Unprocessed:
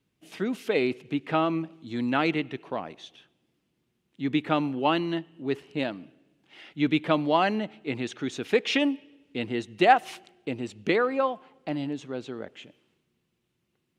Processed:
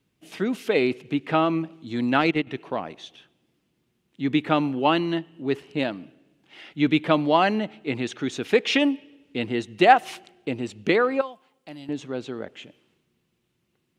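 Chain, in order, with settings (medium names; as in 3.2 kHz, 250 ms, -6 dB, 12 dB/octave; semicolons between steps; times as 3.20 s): 2.01–2.47 s: transient shaper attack +4 dB, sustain -10 dB; 11.21–11.89 s: pre-emphasis filter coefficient 0.8; trim +3.5 dB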